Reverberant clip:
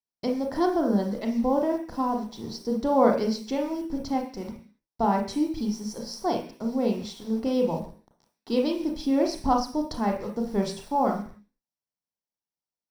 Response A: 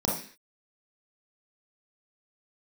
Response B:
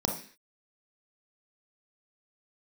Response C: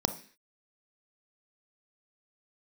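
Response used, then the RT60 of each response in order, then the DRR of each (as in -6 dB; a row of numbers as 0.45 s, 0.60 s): B; 0.45 s, 0.45 s, 0.45 s; -3.5 dB, 2.0 dB, 9.5 dB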